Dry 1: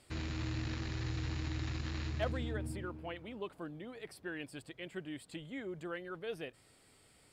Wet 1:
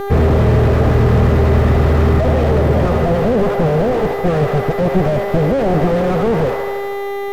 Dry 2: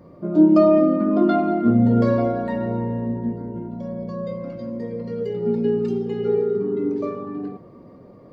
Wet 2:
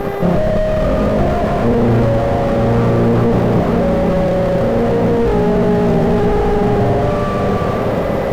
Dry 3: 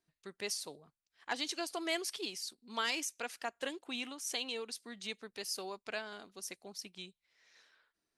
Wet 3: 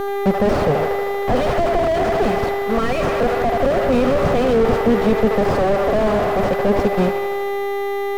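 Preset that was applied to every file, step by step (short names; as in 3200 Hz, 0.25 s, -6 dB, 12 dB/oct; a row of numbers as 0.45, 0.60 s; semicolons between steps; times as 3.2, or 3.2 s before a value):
minimum comb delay 1.6 ms; low-pass opened by the level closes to 700 Hz, open at -22.5 dBFS; low shelf 150 Hz -9.5 dB; vocal rider within 3 dB 0.5 s; sample leveller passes 3; reverse; compressor, threshold -33 dBFS; reverse; buzz 400 Hz, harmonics 32, -49 dBFS -5 dB/oct; on a send: band-limited delay 78 ms, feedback 70%, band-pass 1000 Hz, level -8.5 dB; on the sum: maximiser +29.5 dB; slew limiter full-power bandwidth 130 Hz; gain -2 dB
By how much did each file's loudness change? +26.5, +6.5, +21.0 LU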